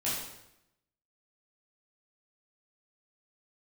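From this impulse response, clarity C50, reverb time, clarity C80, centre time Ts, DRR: 0.5 dB, 0.85 s, 4.0 dB, 63 ms, -9.0 dB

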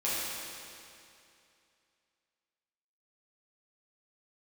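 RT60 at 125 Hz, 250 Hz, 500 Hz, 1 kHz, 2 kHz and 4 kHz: 2.6 s, 2.6 s, 2.6 s, 2.6 s, 2.6 s, 2.4 s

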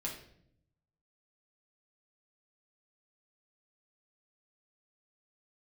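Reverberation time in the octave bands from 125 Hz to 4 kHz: 1.3 s, 1.1 s, 0.80 s, 0.55 s, 0.55 s, 0.50 s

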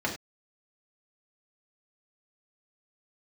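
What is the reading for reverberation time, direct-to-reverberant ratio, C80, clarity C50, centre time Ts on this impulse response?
no single decay rate, -2.5 dB, 13.0 dB, 8.0 dB, 18 ms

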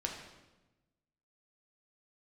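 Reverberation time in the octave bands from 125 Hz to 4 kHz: 1.5 s, 1.4 s, 1.1 s, 1.0 s, 0.95 s, 0.90 s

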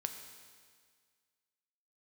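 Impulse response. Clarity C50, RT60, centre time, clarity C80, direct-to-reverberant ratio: 7.5 dB, 1.8 s, 30 ms, 8.5 dB, 5.5 dB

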